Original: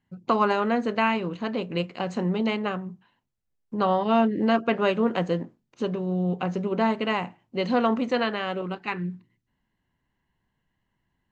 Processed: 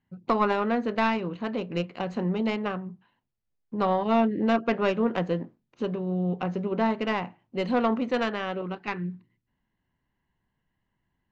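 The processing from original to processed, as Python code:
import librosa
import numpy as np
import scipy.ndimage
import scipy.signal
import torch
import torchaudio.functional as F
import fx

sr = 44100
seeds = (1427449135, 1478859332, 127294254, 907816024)

y = fx.tracing_dist(x, sr, depth_ms=0.068)
y = fx.air_absorb(y, sr, metres=120.0)
y = F.gain(torch.from_numpy(y), -1.5).numpy()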